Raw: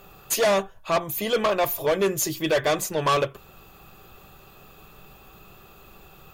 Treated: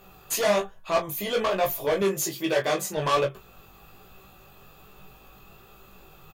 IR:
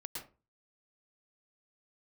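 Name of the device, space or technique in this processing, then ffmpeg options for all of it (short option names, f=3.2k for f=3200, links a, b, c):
double-tracked vocal: -filter_complex "[0:a]asplit=2[a][b];[b]adelay=21,volume=-7dB[c];[a][c]amix=inputs=2:normalize=0,flanger=delay=15.5:depth=4.6:speed=1.2,asettb=1/sr,asplit=3[d][e][f];[d]atrim=end=2.024[g];[e]atrim=start=2.02:end=2.97,asetpts=PTS-STARTPTS,afade=t=in:d=0.004:c=qsin,afade=t=out:st=0.946:d=0.004:c=qsin,highpass=130[h];[f]atrim=start=2.966[i];[g][h]acrossfade=d=0.004:c1=hsin:c2=qsin[j];[j][i]acrossfade=d=0.004:c1=qsin:c2=hsin"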